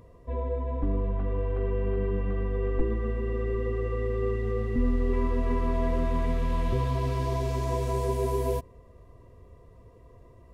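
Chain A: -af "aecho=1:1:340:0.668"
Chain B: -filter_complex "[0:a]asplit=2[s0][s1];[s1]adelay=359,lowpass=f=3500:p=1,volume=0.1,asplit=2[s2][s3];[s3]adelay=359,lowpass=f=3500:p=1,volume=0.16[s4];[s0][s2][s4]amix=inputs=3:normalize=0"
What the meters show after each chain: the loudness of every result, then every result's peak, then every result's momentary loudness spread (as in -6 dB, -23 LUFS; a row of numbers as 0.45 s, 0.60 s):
-28.0 LUFS, -29.5 LUFS; -12.0 dBFS, -14.0 dBFS; 6 LU, 3 LU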